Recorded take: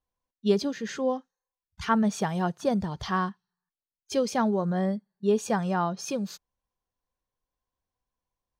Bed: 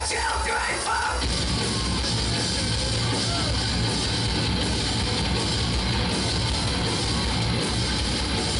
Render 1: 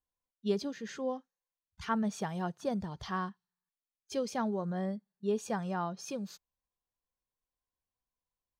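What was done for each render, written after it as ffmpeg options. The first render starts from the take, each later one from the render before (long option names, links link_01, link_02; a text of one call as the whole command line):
ffmpeg -i in.wav -af "volume=-8dB" out.wav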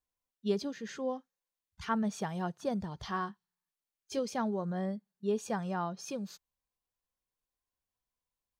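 ffmpeg -i in.wav -filter_complex "[0:a]asettb=1/sr,asplit=3[link_01][link_02][link_03];[link_01]atrim=end=3.024[link_04];[link_02]atrim=start=3.02:end=4.19,asetpts=PTS-STARTPTS,afade=type=in:duration=0.004:curve=qsin,afade=type=out:start_time=1.166:duration=0.004:curve=qsin,asplit=2[link_05][link_06];[link_06]adelay=19,volume=-9.5dB[link_07];[link_05][link_07]amix=inputs=2:normalize=0,atrim=end_sample=51597[link_08];[link_03]atrim=start=4.186[link_09];[link_04][link_08]acrossfade=duration=0.004:curve1=hsin:curve2=qsin[link_10];[link_10][link_09]acrossfade=duration=0.004:curve1=qsin:curve2=hsin" out.wav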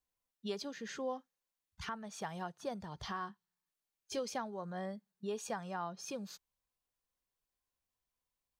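ffmpeg -i in.wav -filter_complex "[0:a]acrossover=split=560|2900[link_01][link_02][link_03];[link_01]acompressor=threshold=-42dB:ratio=6[link_04];[link_04][link_02][link_03]amix=inputs=3:normalize=0,alimiter=level_in=4dB:limit=-24dB:level=0:latency=1:release=454,volume=-4dB" out.wav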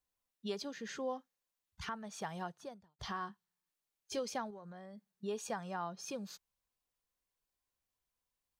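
ffmpeg -i in.wav -filter_complex "[0:a]asettb=1/sr,asplit=3[link_01][link_02][link_03];[link_01]atrim=end=4.504[link_04];[link_02]atrim=start=4.5:end=5.11,asetpts=PTS-STARTPTS,afade=type=in:duration=0.004:curve=qsin,afade=type=out:start_time=0.606:duration=0.004:curve=qsin,acompressor=threshold=-46dB:ratio=12:attack=3.2:release=140:knee=1:detection=peak[link_05];[link_03]atrim=start=5.106[link_06];[link_04][link_05]acrossfade=duration=0.004:curve1=hsin:curve2=qsin[link_07];[link_07][link_06]acrossfade=duration=0.004:curve1=qsin:curve2=hsin,asplit=2[link_08][link_09];[link_08]atrim=end=2.99,asetpts=PTS-STARTPTS,afade=type=out:start_time=2.52:duration=0.47:curve=qua[link_10];[link_09]atrim=start=2.99,asetpts=PTS-STARTPTS,afade=type=in:duration=0.004:curve=hsin[link_11];[link_10][link_11]concat=n=2:v=0:a=1" out.wav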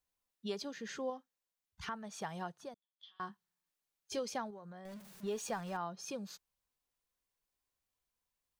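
ffmpeg -i in.wav -filter_complex "[0:a]asettb=1/sr,asplit=3[link_01][link_02][link_03];[link_01]atrim=end=2.744[link_04];[link_02]atrim=start=2.74:end=3.2,asetpts=PTS-STARTPTS,afade=type=in:duration=0.004:curve=qsin,afade=type=out:start_time=0.456:duration=0.004:curve=qsin,bandpass=frequency=3400:width_type=q:width=18[link_05];[link_03]atrim=start=3.196[link_06];[link_04][link_05]acrossfade=duration=0.004:curve1=hsin:curve2=qsin[link_07];[link_07][link_06]acrossfade=duration=0.004:curve1=qsin:curve2=hsin,asettb=1/sr,asplit=3[link_08][link_09][link_10];[link_08]atrim=end=4.854[link_11];[link_09]atrim=start=4.85:end=5.77,asetpts=PTS-STARTPTS,afade=type=in:duration=0.004:curve=qsin,afade=type=out:start_time=0.916:duration=0.004:curve=qsin,aeval=exprs='val(0)+0.5*0.00335*sgn(val(0))':channel_layout=same[link_12];[link_10]atrim=start=5.766[link_13];[link_11][link_12]acrossfade=duration=0.004:curve1=hsin:curve2=qsin[link_14];[link_14][link_13]acrossfade=duration=0.004:curve1=qsin:curve2=hsin,asplit=3[link_15][link_16][link_17];[link_15]atrim=end=1.102[link_18];[link_16]atrim=start=1.098:end=1.832,asetpts=PTS-STARTPTS,volume=-3.5dB[link_19];[link_17]atrim=start=1.828[link_20];[link_18][link_19]acrossfade=duration=0.004:curve1=hsin:curve2=hsin[link_21];[link_21][link_20]acrossfade=duration=0.004:curve1=hsin:curve2=hsin" out.wav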